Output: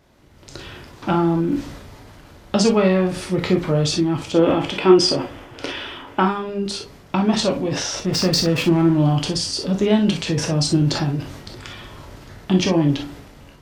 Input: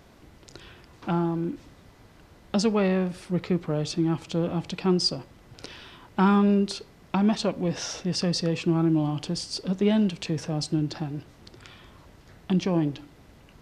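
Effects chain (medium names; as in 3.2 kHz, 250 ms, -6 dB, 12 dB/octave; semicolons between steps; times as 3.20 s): 4.32–6.23 s: time-frequency box 250–3600 Hz +9 dB; level rider gain up to 15 dB; 7.99–8.97 s: hysteresis with a dead band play -20.5 dBFS; transient shaper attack +2 dB, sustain +7 dB; on a send: reverberation, pre-delay 3 ms, DRR 2 dB; on the sum: trim -6 dB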